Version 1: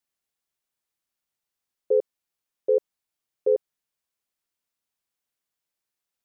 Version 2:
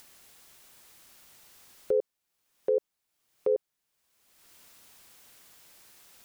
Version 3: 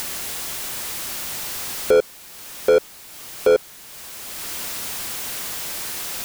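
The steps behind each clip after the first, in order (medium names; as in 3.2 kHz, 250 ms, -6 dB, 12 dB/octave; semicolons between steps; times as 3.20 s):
in parallel at 0 dB: upward compressor, threshold -26 dBFS; on the sum: peak limiter -14 dBFS, peak gain reduction 7.5 dB; trim -4 dB
power-law waveshaper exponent 0.5; upward compressor, threshold -44 dBFS; trim +9 dB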